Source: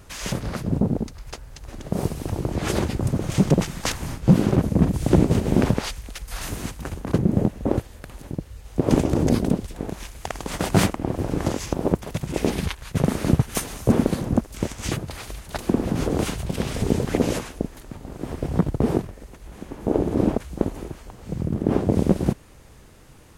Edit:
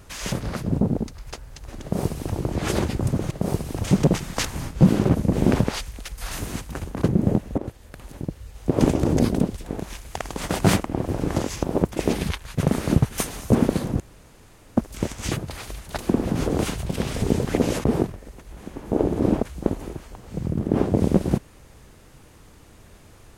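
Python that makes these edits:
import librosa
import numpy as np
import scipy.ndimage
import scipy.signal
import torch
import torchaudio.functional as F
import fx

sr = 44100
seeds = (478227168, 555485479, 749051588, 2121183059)

y = fx.edit(x, sr, fx.duplicate(start_s=1.82, length_s=0.53, to_s=3.31),
    fx.cut(start_s=4.8, length_s=0.63),
    fx.fade_in_from(start_s=7.68, length_s=0.71, curve='qsin', floor_db=-15.0),
    fx.cut(start_s=12.06, length_s=0.27),
    fx.insert_room_tone(at_s=14.37, length_s=0.77),
    fx.cut(start_s=17.44, length_s=1.35), tone=tone)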